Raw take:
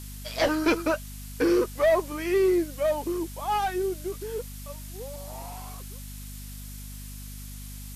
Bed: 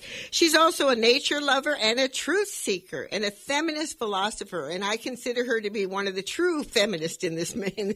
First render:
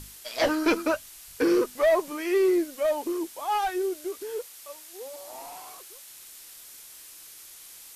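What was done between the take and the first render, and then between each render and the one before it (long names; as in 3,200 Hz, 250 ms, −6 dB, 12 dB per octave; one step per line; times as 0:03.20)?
mains-hum notches 50/100/150/200/250 Hz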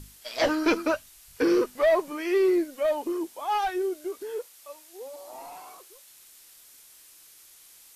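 noise reduction from a noise print 6 dB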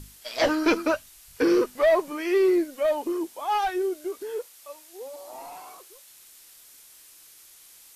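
level +1.5 dB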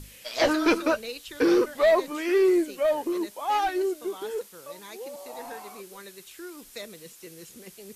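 mix in bed −17 dB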